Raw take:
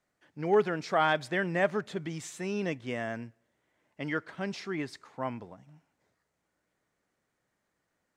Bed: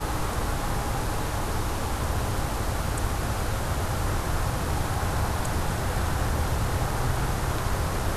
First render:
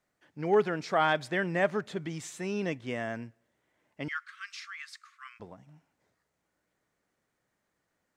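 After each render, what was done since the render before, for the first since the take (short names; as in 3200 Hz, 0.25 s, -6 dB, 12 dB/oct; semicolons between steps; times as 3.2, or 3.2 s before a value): 4.08–5.4 Chebyshev high-pass 1100 Hz, order 10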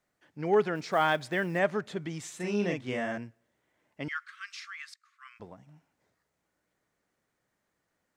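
0.75–1.59 short-mantissa float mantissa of 4-bit; 2.36–3.18 doubler 39 ms -2.5 dB; 4.94–5.43 fade in, from -24 dB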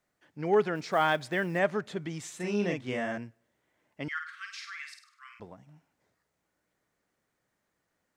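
4.12–5.4 flutter echo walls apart 8.6 m, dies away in 0.49 s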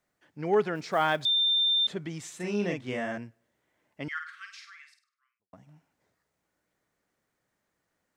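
1.25–1.87 bleep 3590 Hz -21.5 dBFS; 4.27–5.53 fade out quadratic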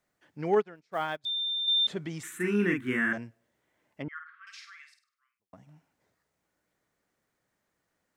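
0.55–1.68 upward expander 2.5:1, over -42 dBFS; 2.23–3.13 EQ curve 160 Hz 0 dB, 240 Hz +6 dB, 360 Hz +7 dB, 610 Hz -18 dB, 1500 Hz +14 dB, 3100 Hz -2 dB, 5000 Hz -13 dB, 11000 Hz +12 dB; 4.02–4.47 LPF 1100 Hz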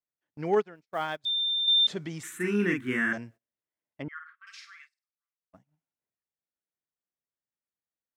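gate -51 dBFS, range -24 dB; dynamic EQ 5400 Hz, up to +7 dB, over -47 dBFS, Q 1.2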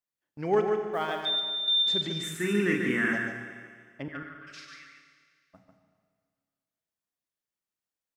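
echo 0.145 s -6 dB; Schroeder reverb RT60 1.9 s, combs from 29 ms, DRR 7 dB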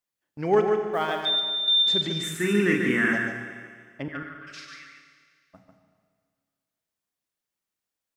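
gain +4 dB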